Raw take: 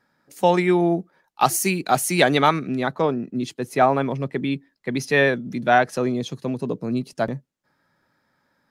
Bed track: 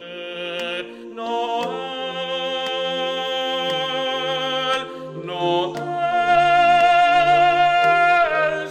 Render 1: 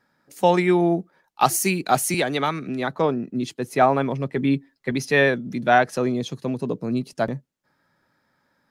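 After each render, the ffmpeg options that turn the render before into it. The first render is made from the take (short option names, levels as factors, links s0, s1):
-filter_complex "[0:a]asettb=1/sr,asplit=3[s0][s1][s2];[s0]atrim=end=2.144[s3];[s1]atrim=start=2.14:end=2.96,asetpts=PTS-STARTPTS,afade=t=in:d=0.004:c=qsin,afade=t=out:st=0.816:d=0.004:c=qsin,acrossover=split=330|1300[s4][s5][s6];[s4]acompressor=threshold=0.0316:ratio=4[s7];[s5]acompressor=threshold=0.0631:ratio=4[s8];[s6]acompressor=threshold=0.0501:ratio=4[s9];[s7][s8][s9]amix=inputs=3:normalize=0[s10];[s2]atrim=start=2.956[s11];[s3][s10]acrossfade=d=0.004:c1=hsin:c2=qsin[s12];[s12][s11]acrossfade=d=0.004:c1=qsin:c2=hsin,asettb=1/sr,asplit=3[s13][s14][s15];[s13]atrim=end=4.364[s16];[s14]atrim=start=4.36:end=4.92,asetpts=PTS-STARTPTS,afade=t=in:d=0.004:c=qsin,afade=t=out:st=0.556:d=0.004:c=qsin,aecho=1:1:7.4:0.69,atrim=end_sample=24696[s17];[s15]atrim=start=4.916[s18];[s16][s17]acrossfade=d=0.004:c1=hsin:c2=qsin[s19];[s19][s18]acrossfade=d=0.004:c1=qsin:c2=hsin"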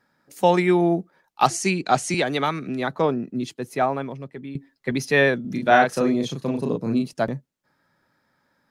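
-filter_complex "[0:a]asettb=1/sr,asplit=3[s0][s1][s2];[s0]atrim=end=1.474[s3];[s1]atrim=start=1.47:end=2.26,asetpts=PTS-STARTPTS,afade=t=in:d=0.004:c=qsin,afade=t=out:st=0.786:d=0.004:c=qsin,lowpass=f=8000:w=0.5412,lowpass=f=8000:w=1.3066[s4];[s2]atrim=start=2.256[s5];[s3][s4]acrossfade=d=0.004:c1=hsin:c2=qsin[s6];[s6][s5]acrossfade=d=0.004:c1=qsin:c2=hsin,asettb=1/sr,asplit=3[s7][s8][s9];[s7]atrim=end=5.414[s10];[s8]atrim=start=5.41:end=7.11,asetpts=PTS-STARTPTS,afade=t=in:d=0.004:c=qsin,afade=t=out:st=1.696:d=0.004:c=qsin,asplit=2[s11][s12];[s12]adelay=36,volume=0.708[s13];[s11][s13]amix=inputs=2:normalize=0,atrim=end_sample=74970[s14];[s9]atrim=start=7.106[s15];[s10][s14]acrossfade=d=0.004:c1=hsin:c2=qsin[s16];[s16][s15]acrossfade=d=0.004:c1=qsin:c2=hsin,asplit=2[s17][s18];[s17]atrim=end=4.55,asetpts=PTS-STARTPTS,afade=t=out:st=3.17:d=1.38:silence=0.133352[s19];[s18]atrim=start=4.55,asetpts=PTS-STARTPTS,afade=t=in:d=0.004:c=hsin:silence=0.133352[s20];[s19][s20]concat=n=2:v=0:a=1"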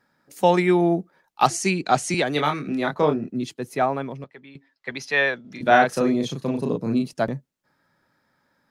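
-filter_complex "[0:a]asettb=1/sr,asplit=3[s0][s1][s2];[s0]atrim=end=2.334[s3];[s1]atrim=start=2.33:end=3.3,asetpts=PTS-STARTPTS,afade=t=in:d=0.004:c=qsin,afade=t=out:st=0.966:d=0.004:c=qsin,asplit=2[s4][s5];[s5]adelay=27,volume=0.531[s6];[s4][s6]amix=inputs=2:normalize=0,atrim=end_sample=42777[s7];[s2]atrim=start=3.296[s8];[s3][s7]acrossfade=d=0.004:c1=hsin:c2=qsin[s9];[s9][s8]acrossfade=d=0.004:c1=qsin:c2=hsin,asettb=1/sr,asplit=3[s10][s11][s12];[s10]atrim=end=4.244[s13];[s11]atrim=start=4.24:end=5.61,asetpts=PTS-STARTPTS,afade=t=in:d=0.004:c=qsin,afade=t=out:st=1.366:d=0.004:c=qsin,acrossover=split=580 6200:gain=0.2 1 0.2[s14][s15][s16];[s14][s15][s16]amix=inputs=3:normalize=0[s17];[s12]atrim=start=5.606[s18];[s13][s17]acrossfade=d=0.004:c1=hsin:c2=qsin[s19];[s19][s18]acrossfade=d=0.004:c1=qsin:c2=hsin"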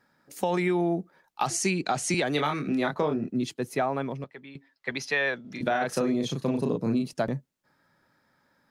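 -af "alimiter=limit=0.237:level=0:latency=1:release=42,acompressor=threshold=0.0794:ratio=6"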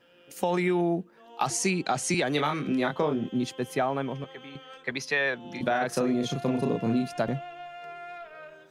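-filter_complex "[1:a]volume=0.0501[s0];[0:a][s0]amix=inputs=2:normalize=0"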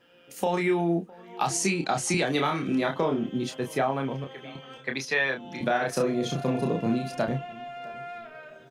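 -filter_complex "[0:a]asplit=2[s0][s1];[s1]adelay=30,volume=0.501[s2];[s0][s2]amix=inputs=2:normalize=0,asplit=2[s3][s4];[s4]adelay=659,lowpass=f=1400:p=1,volume=0.0794,asplit=2[s5][s6];[s6]adelay=659,lowpass=f=1400:p=1,volume=0.37,asplit=2[s7][s8];[s8]adelay=659,lowpass=f=1400:p=1,volume=0.37[s9];[s3][s5][s7][s9]amix=inputs=4:normalize=0"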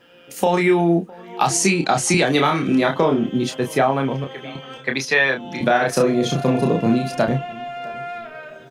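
-af "volume=2.66"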